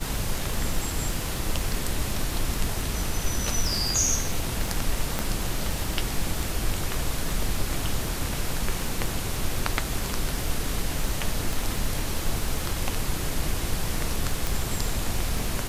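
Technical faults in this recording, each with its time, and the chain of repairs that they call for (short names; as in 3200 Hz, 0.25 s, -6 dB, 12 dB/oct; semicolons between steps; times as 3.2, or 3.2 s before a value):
crackle 30/s -29 dBFS
5.19 pop -10 dBFS
11.53 pop
14.47 pop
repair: de-click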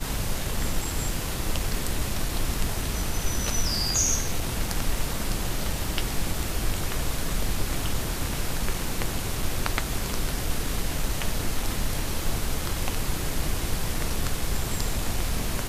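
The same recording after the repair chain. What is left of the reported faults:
5.19 pop
11.53 pop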